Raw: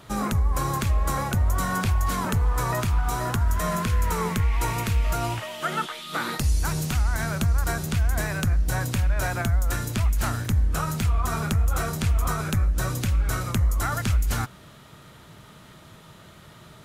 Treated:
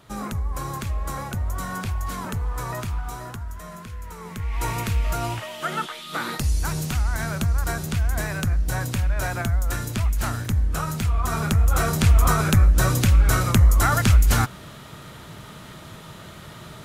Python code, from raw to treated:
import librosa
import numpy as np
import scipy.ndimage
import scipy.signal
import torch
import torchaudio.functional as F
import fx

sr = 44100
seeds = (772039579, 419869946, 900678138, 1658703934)

y = fx.gain(x, sr, db=fx.line((2.91, -4.5), (3.64, -13.0), (4.2, -13.0), (4.66, 0.0), (11.06, 0.0), (12.11, 7.0)))